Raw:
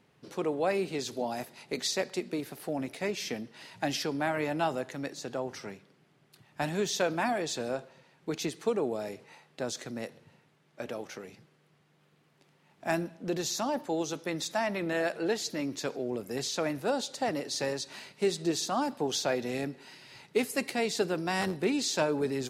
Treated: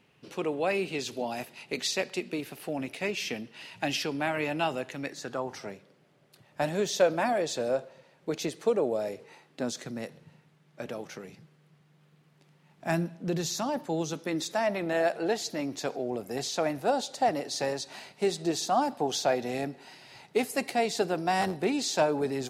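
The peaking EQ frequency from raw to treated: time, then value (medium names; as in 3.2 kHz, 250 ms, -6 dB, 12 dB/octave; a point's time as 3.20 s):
peaking EQ +8.5 dB 0.48 oct
4.98 s 2.7 kHz
5.73 s 560 Hz
9.11 s 560 Hz
9.90 s 160 Hz
14.08 s 160 Hz
14.77 s 730 Hz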